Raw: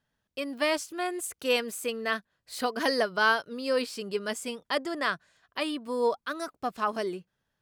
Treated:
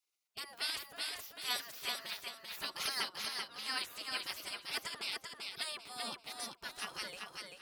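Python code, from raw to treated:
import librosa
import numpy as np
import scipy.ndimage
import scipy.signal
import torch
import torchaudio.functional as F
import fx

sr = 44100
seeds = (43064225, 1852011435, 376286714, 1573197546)

y = fx.spec_gate(x, sr, threshold_db=-20, keep='weak')
y = fx.level_steps(y, sr, step_db=16, at=(3.09, 3.49))
y = fx.echo_feedback(y, sr, ms=389, feedback_pct=28, wet_db=-4.0)
y = y * librosa.db_to_amplitude(2.5)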